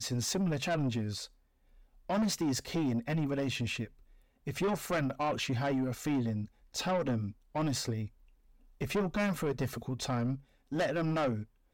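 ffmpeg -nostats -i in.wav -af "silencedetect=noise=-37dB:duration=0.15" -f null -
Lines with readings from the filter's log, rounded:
silence_start: 1.25
silence_end: 2.09 | silence_duration: 0.85
silence_start: 3.85
silence_end: 4.47 | silence_duration: 0.62
silence_start: 6.45
silence_end: 6.74 | silence_duration: 0.30
silence_start: 7.31
silence_end: 7.56 | silence_duration: 0.25
silence_start: 8.06
silence_end: 8.81 | silence_duration: 0.75
silence_start: 10.35
silence_end: 10.72 | silence_duration: 0.37
silence_start: 11.42
silence_end: 11.73 | silence_duration: 0.31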